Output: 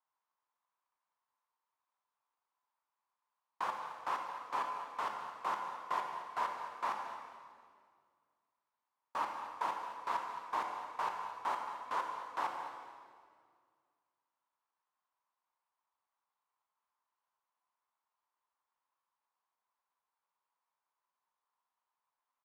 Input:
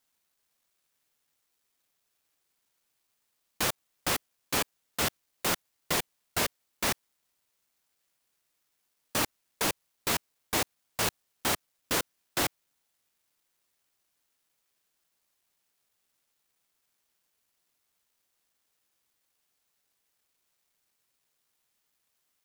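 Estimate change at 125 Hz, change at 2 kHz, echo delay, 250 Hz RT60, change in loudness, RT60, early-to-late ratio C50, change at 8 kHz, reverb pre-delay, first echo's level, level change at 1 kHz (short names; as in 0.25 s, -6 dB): under -25 dB, -10.5 dB, 0.219 s, 2.3 s, -8.0 dB, 2.0 s, 3.5 dB, -27.0 dB, 21 ms, -13.5 dB, +1.5 dB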